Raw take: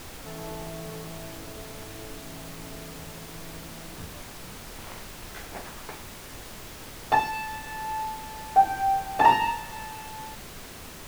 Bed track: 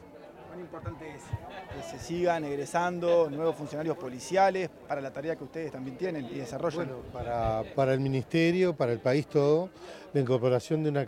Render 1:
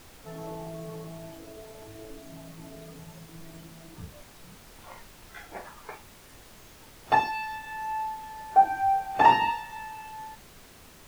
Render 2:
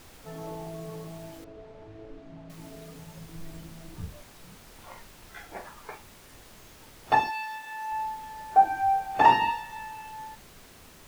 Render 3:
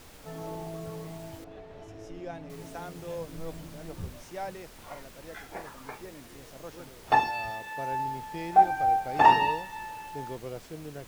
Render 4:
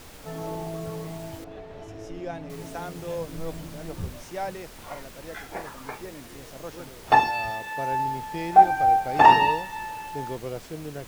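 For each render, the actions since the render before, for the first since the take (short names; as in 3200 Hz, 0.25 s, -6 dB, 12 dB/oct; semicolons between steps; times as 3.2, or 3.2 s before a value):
noise print and reduce 9 dB
1.44–2.5 tape spacing loss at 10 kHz 30 dB; 3.16–4.17 low shelf 110 Hz +9 dB; 7.3–7.92 HPF 490 Hz 6 dB/oct
add bed track -13.5 dB
gain +5 dB; limiter -3 dBFS, peak gain reduction 1.5 dB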